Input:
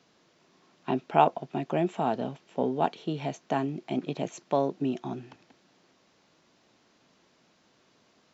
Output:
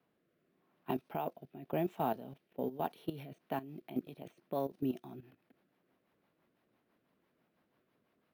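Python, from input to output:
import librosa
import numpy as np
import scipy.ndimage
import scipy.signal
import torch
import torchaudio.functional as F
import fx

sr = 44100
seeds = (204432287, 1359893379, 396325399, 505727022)

y = fx.level_steps(x, sr, step_db=14)
y = fx.rotary_switch(y, sr, hz=0.9, then_hz=6.0, switch_at_s=3.0)
y = fx.env_lowpass(y, sr, base_hz=2200.0, full_db=-28.0)
y = np.repeat(scipy.signal.resample_poly(y, 1, 3), 3)[:len(y)]
y = F.gain(torch.from_numpy(y), -3.5).numpy()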